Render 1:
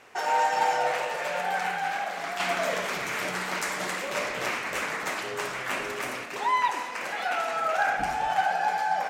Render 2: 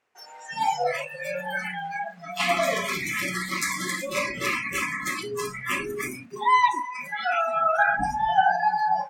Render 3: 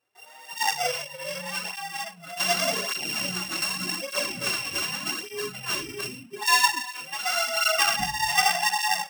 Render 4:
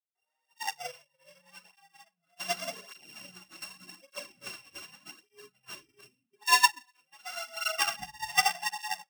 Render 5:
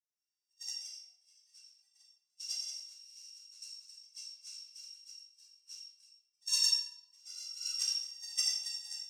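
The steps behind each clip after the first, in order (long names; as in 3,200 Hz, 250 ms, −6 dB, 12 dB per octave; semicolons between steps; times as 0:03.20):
noise reduction from a noise print of the clip's start 28 dB; level +6 dB
samples sorted by size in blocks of 16 samples; dynamic equaliser 5,700 Hz, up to +7 dB, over −41 dBFS, Q 1.4; through-zero flanger with one copy inverted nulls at 0.85 Hz, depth 5.1 ms
expander for the loud parts 2.5 to 1, over −40 dBFS
four-pole ladder band-pass 6,000 Hz, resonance 70%; convolution reverb RT60 0.90 s, pre-delay 3 ms, DRR −7 dB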